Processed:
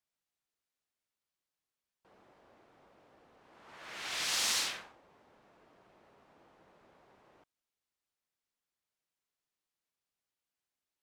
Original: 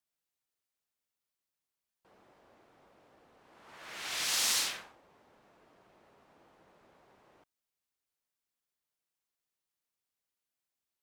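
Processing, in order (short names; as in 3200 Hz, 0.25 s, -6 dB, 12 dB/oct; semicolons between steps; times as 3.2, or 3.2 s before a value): high shelf 10000 Hz -9.5 dB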